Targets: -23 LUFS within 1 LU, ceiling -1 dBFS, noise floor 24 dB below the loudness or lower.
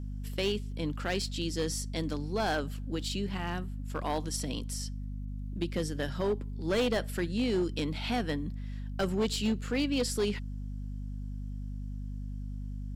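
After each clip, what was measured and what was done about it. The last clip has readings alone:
clipped 1.4%; flat tops at -23.5 dBFS; hum 50 Hz; harmonics up to 250 Hz; hum level -35 dBFS; loudness -33.5 LUFS; peak -23.5 dBFS; loudness target -23.0 LUFS
-> clip repair -23.5 dBFS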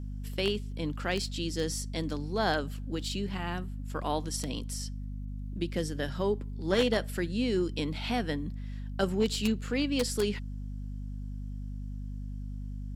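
clipped 0.0%; hum 50 Hz; harmonics up to 250 Hz; hum level -35 dBFS
-> de-hum 50 Hz, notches 5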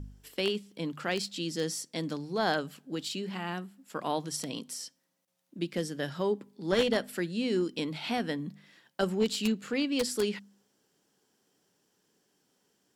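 hum none; loudness -32.5 LUFS; peak -14.5 dBFS; loudness target -23.0 LUFS
-> gain +9.5 dB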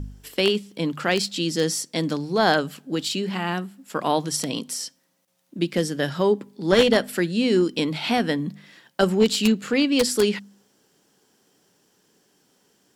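loudness -23.0 LUFS; peak -5.0 dBFS; noise floor -66 dBFS

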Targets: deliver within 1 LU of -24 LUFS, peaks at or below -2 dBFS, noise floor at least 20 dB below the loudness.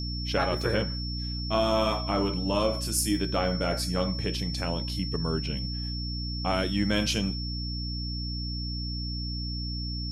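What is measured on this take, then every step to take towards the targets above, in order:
hum 60 Hz; harmonics up to 300 Hz; hum level -31 dBFS; steady tone 5400 Hz; tone level -36 dBFS; loudness -29.0 LUFS; peak -12.5 dBFS; loudness target -24.0 LUFS
-> de-hum 60 Hz, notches 5; notch 5400 Hz, Q 30; gain +5 dB

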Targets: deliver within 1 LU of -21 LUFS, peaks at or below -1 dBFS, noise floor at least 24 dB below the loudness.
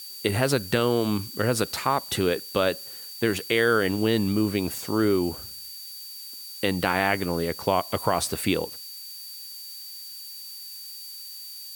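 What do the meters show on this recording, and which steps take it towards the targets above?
steady tone 4600 Hz; tone level -40 dBFS; noise floor -40 dBFS; noise floor target -49 dBFS; loudness -25.0 LUFS; peak -7.0 dBFS; loudness target -21.0 LUFS
-> notch 4600 Hz, Q 30; denoiser 9 dB, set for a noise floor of -40 dBFS; gain +4 dB

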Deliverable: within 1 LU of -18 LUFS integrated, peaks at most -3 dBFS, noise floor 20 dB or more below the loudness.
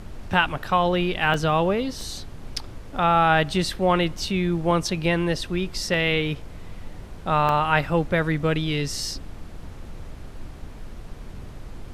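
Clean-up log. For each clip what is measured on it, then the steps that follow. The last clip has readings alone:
dropouts 6; longest dropout 1.2 ms; noise floor -40 dBFS; noise floor target -43 dBFS; loudness -23.0 LUFS; peak -5.0 dBFS; loudness target -18.0 LUFS
-> interpolate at 1.34/2.01/4.19/4.71/5.94/7.49, 1.2 ms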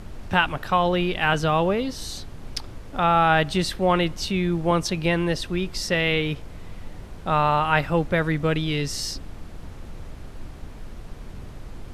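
dropouts 0; noise floor -40 dBFS; noise floor target -43 dBFS
-> noise print and reduce 6 dB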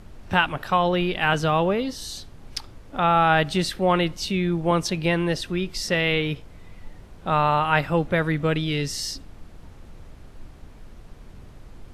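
noise floor -46 dBFS; loudness -23.0 LUFS; peak -5.0 dBFS; loudness target -18.0 LUFS
-> gain +5 dB; limiter -3 dBFS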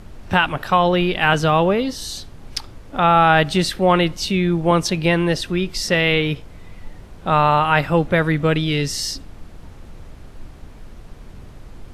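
loudness -18.0 LUFS; peak -3.0 dBFS; noise floor -41 dBFS

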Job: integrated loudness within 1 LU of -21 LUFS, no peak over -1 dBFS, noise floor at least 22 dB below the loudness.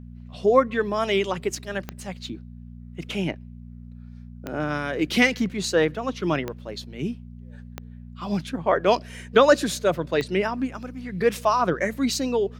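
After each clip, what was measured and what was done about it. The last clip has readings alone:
clicks 5; hum 60 Hz; harmonics up to 240 Hz; hum level -38 dBFS; loudness -24.0 LUFS; peak -3.0 dBFS; loudness target -21.0 LUFS
-> de-click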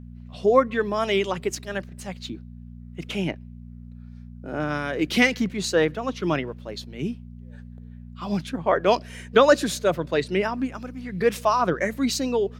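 clicks 0; hum 60 Hz; harmonics up to 240 Hz; hum level -38 dBFS
-> de-hum 60 Hz, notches 4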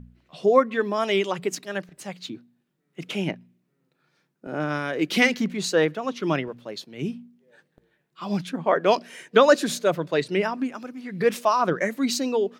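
hum none; loudness -24.0 LUFS; peak -3.0 dBFS; loudness target -21.0 LUFS
-> gain +3 dB; limiter -1 dBFS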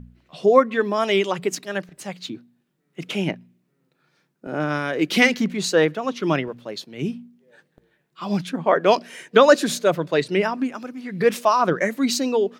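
loudness -21.0 LUFS; peak -1.0 dBFS; noise floor -70 dBFS

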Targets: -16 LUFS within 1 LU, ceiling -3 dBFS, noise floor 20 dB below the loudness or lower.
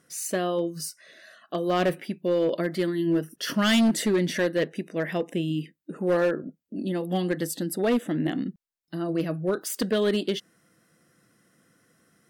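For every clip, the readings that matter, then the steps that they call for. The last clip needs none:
clipped 1.4%; flat tops at -17.5 dBFS; loudness -27.0 LUFS; peak -17.5 dBFS; loudness target -16.0 LUFS
-> clip repair -17.5 dBFS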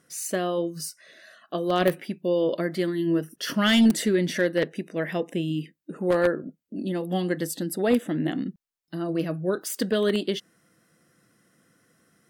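clipped 0.0%; loudness -26.0 LUFS; peak -8.5 dBFS; loudness target -16.0 LUFS
-> gain +10 dB; limiter -3 dBFS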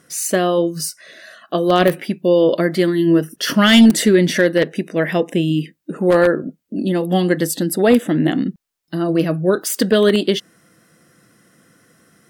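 loudness -16.5 LUFS; peak -3.0 dBFS; noise floor -61 dBFS

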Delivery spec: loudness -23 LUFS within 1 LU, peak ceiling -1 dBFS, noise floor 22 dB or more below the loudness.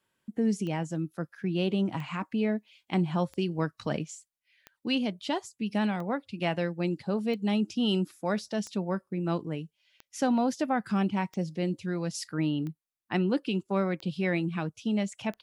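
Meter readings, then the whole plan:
clicks 12; loudness -30.5 LUFS; peak -16.0 dBFS; loudness target -23.0 LUFS
-> de-click; gain +7.5 dB

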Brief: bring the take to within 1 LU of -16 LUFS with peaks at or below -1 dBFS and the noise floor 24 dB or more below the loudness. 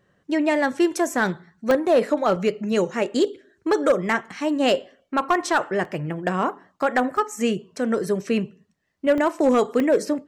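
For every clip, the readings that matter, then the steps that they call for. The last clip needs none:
clipped 0.4%; flat tops at -11.0 dBFS; dropouts 7; longest dropout 1.6 ms; loudness -22.5 LUFS; peak -11.0 dBFS; loudness target -16.0 LUFS
-> clip repair -11 dBFS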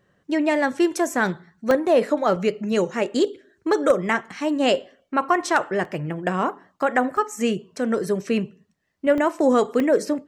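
clipped 0.0%; dropouts 7; longest dropout 1.6 ms
-> interpolate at 1.14/1.71/2.36/5.85/7.17/9.18/9.8, 1.6 ms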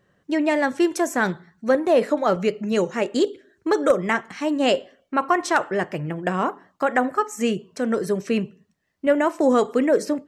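dropouts 0; loudness -22.5 LUFS; peak -3.5 dBFS; loudness target -16.0 LUFS
-> gain +6.5 dB; limiter -1 dBFS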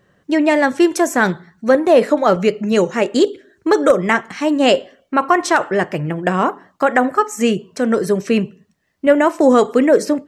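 loudness -16.0 LUFS; peak -1.0 dBFS; noise floor -62 dBFS

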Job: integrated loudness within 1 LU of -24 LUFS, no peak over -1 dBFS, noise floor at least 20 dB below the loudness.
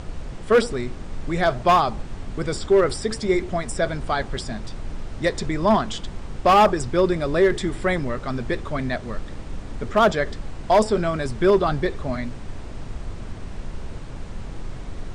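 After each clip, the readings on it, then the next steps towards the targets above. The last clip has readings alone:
clipped 1.1%; flat tops at -10.0 dBFS; noise floor -35 dBFS; noise floor target -42 dBFS; loudness -22.0 LUFS; peak -10.0 dBFS; loudness target -24.0 LUFS
-> clip repair -10 dBFS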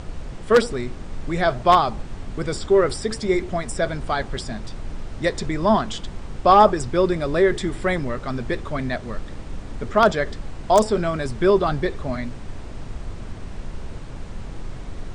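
clipped 0.0%; noise floor -35 dBFS; noise floor target -42 dBFS
-> noise print and reduce 7 dB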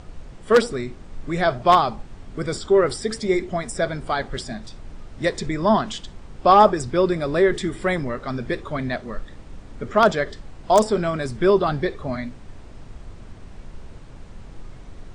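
noise floor -42 dBFS; loudness -21.5 LUFS; peak -1.0 dBFS; loudness target -24.0 LUFS
-> gain -2.5 dB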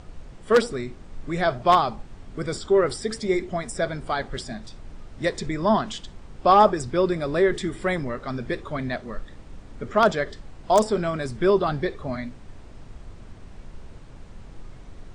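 loudness -24.0 LUFS; peak -3.5 dBFS; noise floor -44 dBFS

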